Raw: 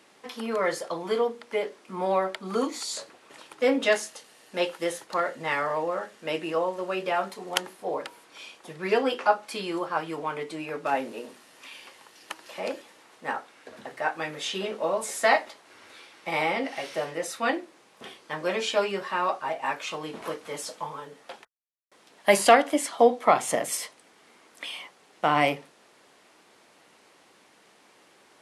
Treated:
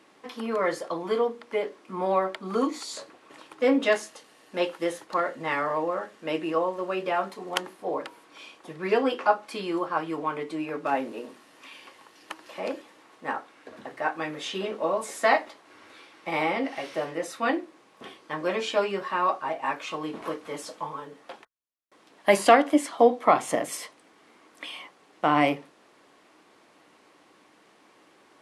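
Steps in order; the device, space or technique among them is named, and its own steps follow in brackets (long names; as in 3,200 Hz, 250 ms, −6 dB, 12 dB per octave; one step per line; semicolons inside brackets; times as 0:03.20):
inside a helmet (high-shelf EQ 3,900 Hz −6.5 dB; hollow resonant body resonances 300/1,100 Hz, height 6 dB)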